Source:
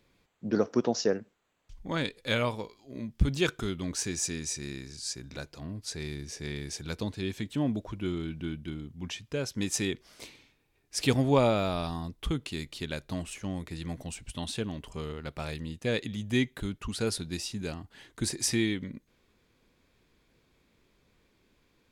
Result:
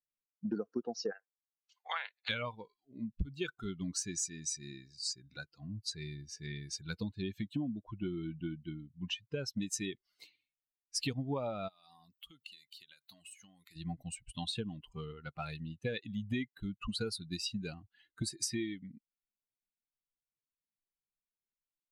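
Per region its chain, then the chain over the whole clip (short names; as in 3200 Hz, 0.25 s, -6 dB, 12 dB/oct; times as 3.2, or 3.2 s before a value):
1.1–2.28 spectral limiter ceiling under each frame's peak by 20 dB + HPF 480 Hz 24 dB/oct + treble ducked by the level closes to 2400 Hz, closed at -30.5 dBFS
11.68–13.76 tilt +3 dB/oct + compressor 16:1, threshold -41 dBFS
whole clip: per-bin expansion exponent 2; high shelf 11000 Hz -11.5 dB; compressor 10:1, threshold -44 dBFS; gain +10.5 dB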